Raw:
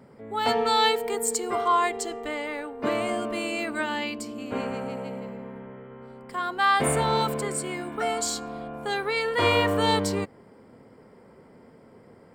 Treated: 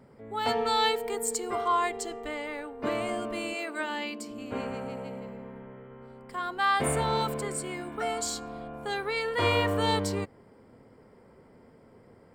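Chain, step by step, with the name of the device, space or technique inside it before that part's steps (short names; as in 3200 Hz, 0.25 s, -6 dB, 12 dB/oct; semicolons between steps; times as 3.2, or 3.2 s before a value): low shelf boost with a cut just above (low shelf 110 Hz +7.5 dB; bell 180 Hz -2.5 dB 0.95 oct); 3.53–4.28 HPF 370 Hz -> 160 Hz 24 dB/oct; gain -4 dB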